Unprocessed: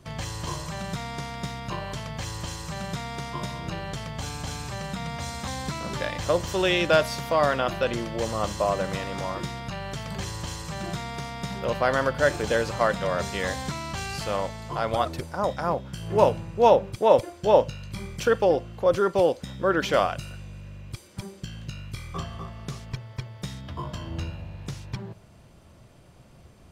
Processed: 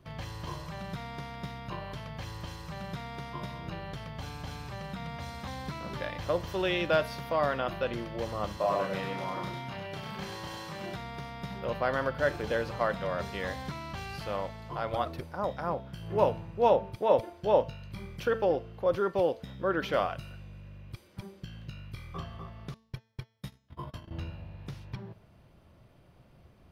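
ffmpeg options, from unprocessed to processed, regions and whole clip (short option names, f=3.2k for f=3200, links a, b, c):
-filter_complex "[0:a]asettb=1/sr,asplit=3[a][b][c];[a]atrim=end=8.574[d];[b]atrim=start=8.57:end=10.96,asetpts=PTS-STARTPTS,afade=t=in:d=0.004:c=qsin,afade=t=out:st=2.386:d=0.004:c=qsin,highpass=f=190:p=1,asplit=2[e][f];[f]adelay=31,volume=-3dB[g];[e][g]amix=inputs=2:normalize=0,atrim=end_sample=105399,aecho=1:1:100:0.596,atrim=end_sample=105399[h];[c]atrim=start=10.956[i];[d][h]acrossfade=d=0.004:c1=hsin:c2=qsin[j];[j][i]acrossfade=d=0.004:c1=qsin:c2=hsin,asettb=1/sr,asplit=3[k][l][m];[k]atrim=end=22.744[n];[l]atrim=start=22.74:end=24.11,asetpts=PTS-STARTPTS,afade=t=in:d=0.004:c=qsin,afade=t=out:st=1.366:d=0.004:c=qsin,agate=range=-29dB:threshold=-35dB:ratio=16:release=100:detection=peak,equalizer=f=11k:t=o:w=0.83:g=10[o];[m]atrim=start=24.106[p];[n][o]acrossfade=d=0.004:c1=hsin:c2=qsin[q];[q][p]acrossfade=d=0.004:c1=qsin:c2=hsin,equalizer=f=7.5k:t=o:w=0.86:g=-13.5,bandreject=f=223.5:t=h:w=4,bandreject=f=447:t=h:w=4,bandreject=f=670.5:t=h:w=4,bandreject=f=894:t=h:w=4,bandreject=f=1.1175k:t=h:w=4,bandreject=f=1.341k:t=h:w=4,bandreject=f=1.5645k:t=h:w=4,bandreject=f=1.788k:t=h:w=4,bandreject=f=2.0115k:t=h:w=4,bandreject=f=2.235k:t=h:w=4,bandreject=f=2.4585k:t=h:w=4,bandreject=f=2.682k:t=h:w=4,bandreject=f=2.9055k:t=h:w=4,bandreject=f=3.129k:t=h:w=4,bandreject=f=3.3525k:t=h:w=4,bandreject=f=3.576k:t=h:w=4,bandreject=f=3.7995k:t=h:w=4,bandreject=f=4.023k:t=h:w=4,bandreject=f=4.2465k:t=h:w=4,bandreject=f=4.47k:t=h:w=4,bandreject=f=4.6935k:t=h:w=4,bandreject=f=4.917k:t=h:w=4,bandreject=f=5.1405k:t=h:w=4,bandreject=f=5.364k:t=h:w=4,bandreject=f=5.5875k:t=h:w=4,bandreject=f=5.811k:t=h:w=4,bandreject=f=6.0345k:t=h:w=4,bandreject=f=6.258k:t=h:w=4,bandreject=f=6.4815k:t=h:w=4,bandreject=f=6.705k:t=h:w=4,bandreject=f=6.9285k:t=h:w=4,bandreject=f=7.152k:t=h:w=4,bandreject=f=7.3755k:t=h:w=4,bandreject=f=7.599k:t=h:w=4,bandreject=f=7.8225k:t=h:w=4,volume=-6dB"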